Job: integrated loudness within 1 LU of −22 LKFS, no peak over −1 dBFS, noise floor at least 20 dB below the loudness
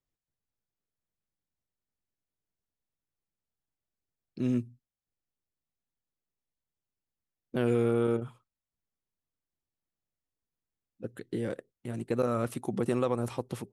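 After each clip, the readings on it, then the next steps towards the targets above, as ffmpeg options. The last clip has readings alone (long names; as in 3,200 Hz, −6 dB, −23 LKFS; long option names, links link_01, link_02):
integrated loudness −31.5 LKFS; sample peak −16.0 dBFS; target loudness −22.0 LKFS
→ -af "volume=9.5dB"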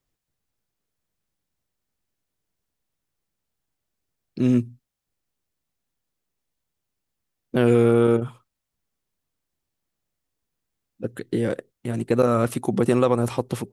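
integrated loudness −22.0 LKFS; sample peak −6.5 dBFS; background noise floor −82 dBFS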